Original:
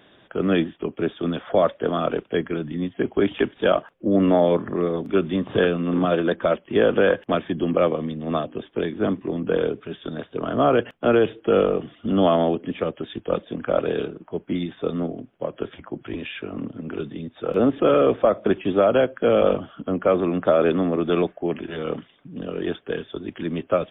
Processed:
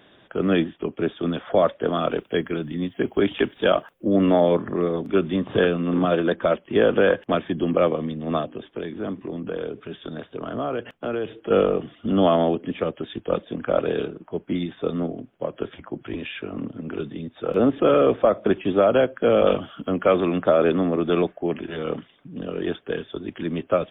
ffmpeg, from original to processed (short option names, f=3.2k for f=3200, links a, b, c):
-filter_complex "[0:a]asettb=1/sr,asplit=3[a][b][c];[a]atrim=end=1.954[d];[b]atrim=start=1.95:end=4.41,asetpts=PTS-STARTPTS,afade=t=in:d=0.004:c=qsin,afade=t=out:st=2.456:d=0.004:c=qsin,aemphasis=mode=production:type=50fm[e];[c]atrim=start=4.406[f];[d][e]acrossfade=d=0.004:c1=hsin:c2=qsin[g];[g][f]acrossfade=d=0.004:c1=qsin:c2=hsin,asettb=1/sr,asplit=3[h][i][j];[h]atrim=end=8.454[k];[i]atrim=start=8.45:end=11.51,asetpts=PTS-STARTPTS,afade=t=in:d=0.004:c=qsin,afade=t=out:st=3.056:d=0.004:c=qsin,acompressor=threshold=-30dB:ratio=2:attack=3.2:release=140:knee=1:detection=peak[l];[j]atrim=start=11.506[m];[k][l]acrossfade=d=0.004:c1=hsin:c2=qsin[n];[n][m]acrossfade=d=0.004:c1=qsin:c2=hsin,asettb=1/sr,asplit=3[o][p][q];[o]atrim=end=19.474[r];[p]atrim=start=19.47:end=20.42,asetpts=PTS-STARTPTS,afade=t=in:d=0.004:c=qsin,afade=t=out:st=0.946:d=0.004:c=qsin,highshelf=f=2.5k:g=11.5[s];[q]atrim=start=20.416[t];[r][s]acrossfade=d=0.004:c1=hsin:c2=qsin[u];[u][t]acrossfade=d=0.004:c1=qsin:c2=hsin"